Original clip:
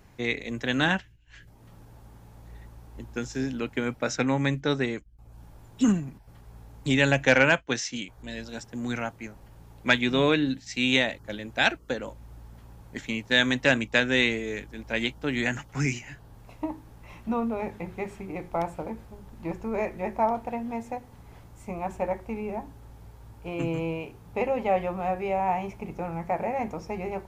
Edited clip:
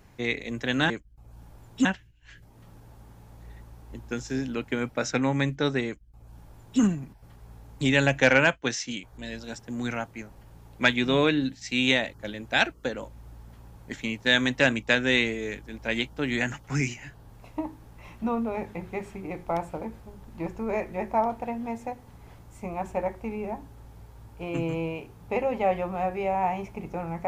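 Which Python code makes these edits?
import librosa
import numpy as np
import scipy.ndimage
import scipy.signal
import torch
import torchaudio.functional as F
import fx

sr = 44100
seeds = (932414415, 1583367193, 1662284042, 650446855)

y = fx.edit(x, sr, fx.duplicate(start_s=4.91, length_s=0.95, to_s=0.9), tone=tone)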